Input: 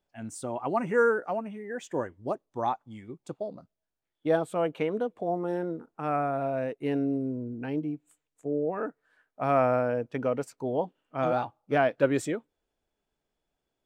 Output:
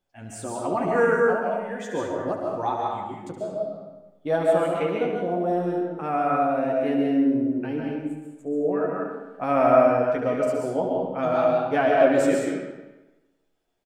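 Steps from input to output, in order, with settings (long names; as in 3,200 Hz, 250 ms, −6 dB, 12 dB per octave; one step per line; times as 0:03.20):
ambience of single reflections 11 ms −4 dB, 72 ms −8 dB
convolution reverb RT60 1.1 s, pre-delay 95 ms, DRR −1.5 dB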